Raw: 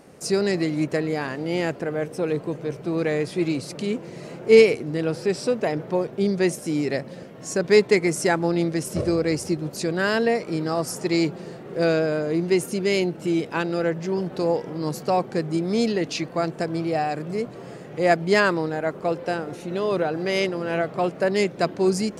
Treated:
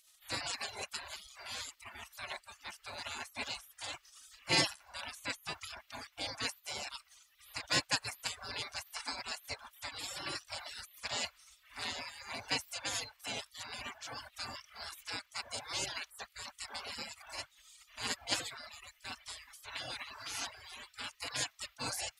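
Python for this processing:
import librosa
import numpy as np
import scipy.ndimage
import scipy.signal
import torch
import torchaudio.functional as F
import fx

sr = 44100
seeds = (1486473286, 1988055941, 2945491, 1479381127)

y = fx.notch_comb(x, sr, f0_hz=630.0)
y = fx.spec_gate(y, sr, threshold_db=-30, keep='weak')
y = fx.dereverb_blind(y, sr, rt60_s=1.0)
y = y * 10.0 ** (4.5 / 20.0)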